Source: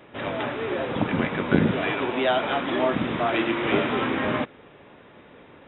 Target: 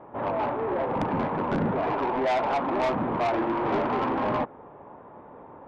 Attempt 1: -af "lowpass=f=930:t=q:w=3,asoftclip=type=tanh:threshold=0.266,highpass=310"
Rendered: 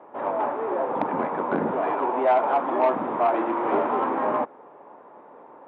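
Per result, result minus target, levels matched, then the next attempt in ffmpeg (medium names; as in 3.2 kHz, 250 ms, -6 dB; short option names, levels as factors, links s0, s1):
saturation: distortion -9 dB; 250 Hz band -3.0 dB
-af "lowpass=f=930:t=q:w=3,asoftclip=type=tanh:threshold=0.0841,highpass=310"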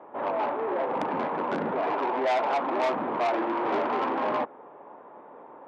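250 Hz band -3.0 dB
-af "lowpass=f=930:t=q:w=3,asoftclip=type=tanh:threshold=0.0841"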